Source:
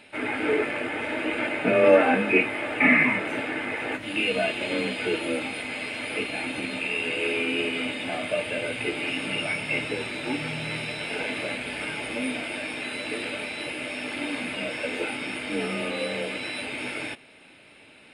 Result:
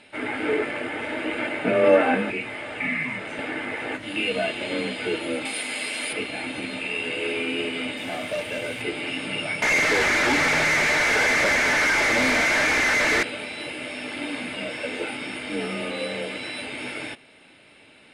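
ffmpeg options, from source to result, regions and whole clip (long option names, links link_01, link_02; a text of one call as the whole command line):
ffmpeg -i in.wav -filter_complex "[0:a]asettb=1/sr,asplit=3[link_01][link_02][link_03];[link_01]atrim=end=2.304[link_04];[link_02]atrim=start=2.3:end=3.39,asetpts=PTS-STARTPTS,afade=type=in:duration=0.004:curve=qsin,afade=type=out:start_time=1.086:duration=0.004:curve=qsin,lowpass=frequency=9800:width=0.5412,lowpass=frequency=9800:width=1.3066,equalizer=frequency=310:width_type=o:width=0.38:gain=-5,acrossover=split=160|3000[link_05][link_06][link_07];[link_06]acompressor=threshold=-33dB:ratio=2.5:attack=3.2:release=140:knee=2.83:detection=peak[link_08];[link_05][link_08][link_07]amix=inputs=3:normalize=0[link_09];[link_03]atrim=start=3.386[link_10];[link_04][link_09]acrossfade=duration=0.004:curve1=hsin:curve2=qsin[link_11];[link_11][link_10]acrossfade=duration=0.004:curve1=qsin:curve2=hsin,asettb=1/sr,asplit=3[link_12][link_13][link_14];[link_12]atrim=end=5.454[link_15];[link_13]atrim=start=5.45:end=6.13,asetpts=PTS-STARTPTS,afade=type=in:duration=0.004:curve=qsin,afade=type=out:start_time=0.676:duration=0.004:curve=qsin,highpass=200,aemphasis=mode=production:type=75kf[link_16];[link_14]atrim=start=6.126[link_17];[link_15][link_16]acrossfade=duration=0.004:curve1=hsin:curve2=qsin[link_18];[link_18][link_17]acrossfade=duration=0.004:curve1=qsin:curve2=hsin,asettb=1/sr,asplit=3[link_19][link_20][link_21];[link_19]atrim=end=7.974[link_22];[link_20]atrim=start=7.97:end=8.82,asetpts=PTS-STARTPTS,afade=type=in:duration=0.004:curve=qsin,afade=type=out:start_time=0.846:duration=0.004:curve=qsin,acrusher=bits=6:mix=0:aa=0.5,asoftclip=type=hard:threshold=-22.5dB[link_23];[link_21]atrim=start=8.816[link_24];[link_22][link_23]acrossfade=duration=0.004:curve1=hsin:curve2=qsin[link_25];[link_25][link_24]acrossfade=duration=0.004:curve1=qsin:curve2=hsin,asettb=1/sr,asplit=3[link_26][link_27][link_28];[link_26]atrim=end=9.624[link_29];[link_27]atrim=start=9.62:end=13.23,asetpts=PTS-STARTPTS,afade=type=in:duration=0.004:curve=qsin,afade=type=out:start_time=3.606:duration=0.004:curve=qsin,highpass=140,highshelf=frequency=2500:width_type=q:width=3:gain=-8,asplit=2[link_30][link_31];[link_31]highpass=frequency=720:poles=1,volume=37dB,asoftclip=type=tanh:threshold=-13.5dB[link_32];[link_30][link_32]amix=inputs=2:normalize=0,lowpass=frequency=3500:poles=1,volume=-6dB[link_33];[link_28]atrim=start=13.226[link_34];[link_29][link_33]acrossfade=duration=0.004:curve1=hsin:curve2=qsin[link_35];[link_35][link_34]acrossfade=duration=0.004:curve1=qsin:curve2=hsin,lowpass=9500,highshelf=frequency=7300:gain=4,bandreject=frequency=2500:width=19" out.wav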